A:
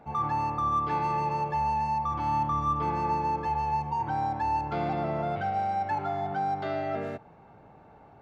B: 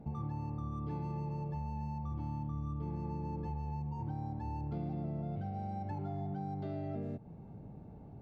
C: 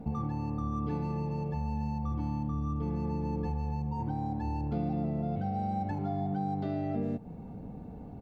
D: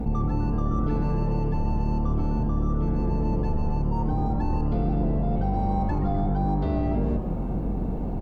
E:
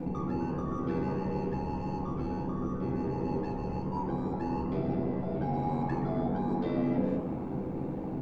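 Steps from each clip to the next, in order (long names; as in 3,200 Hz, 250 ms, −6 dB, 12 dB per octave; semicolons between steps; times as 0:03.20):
drawn EQ curve 200 Hz 0 dB, 1,400 Hz −25 dB, 4,500 Hz −18 dB; downward compressor 5 to 1, threshold −45 dBFS, peak gain reduction 12.5 dB; level +8.5 dB
comb filter 4.1 ms, depth 43%; level +7 dB
sub-octave generator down 2 octaves, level +3 dB; in parallel at 0 dB: compressor whose output falls as the input rises −36 dBFS, ratio −1; on the sum: echo with shifted repeats 127 ms, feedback 58%, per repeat +150 Hz, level −15 dB; level +2 dB
ring modulation 42 Hz; convolution reverb RT60 0.35 s, pre-delay 3 ms, DRR 1.5 dB; flanger 1.5 Hz, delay 3.7 ms, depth 7.4 ms, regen −75%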